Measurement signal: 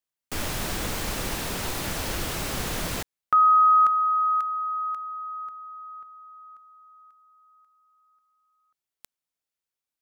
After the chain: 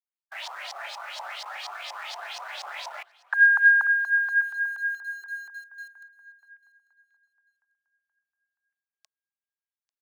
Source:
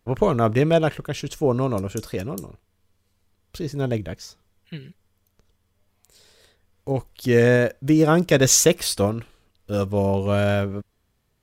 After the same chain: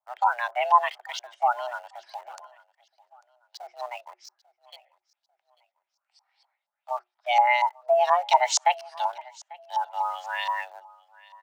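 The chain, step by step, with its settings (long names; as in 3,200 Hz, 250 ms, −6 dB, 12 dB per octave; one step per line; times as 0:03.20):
notch filter 730 Hz, Q 12
auto-filter low-pass saw up 4.2 Hz 530–5,100 Hz
noise reduction from a noise print of the clip's start 8 dB
elliptic band-pass filter 270–9,600 Hz, stop band 40 dB
in parallel at −6.5 dB: centre clipping without the shift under −35.5 dBFS
on the sum: frequency shifter +360 Hz
on a send: repeating echo 844 ms, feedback 34%, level −22.5 dB
on the sum: level −7 dB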